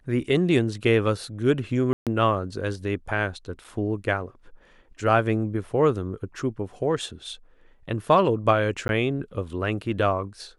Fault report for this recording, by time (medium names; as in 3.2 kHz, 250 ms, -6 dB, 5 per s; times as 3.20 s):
1.93–2.07 s: dropout 137 ms
3.64–3.65 s: dropout 5.5 ms
8.88–8.89 s: dropout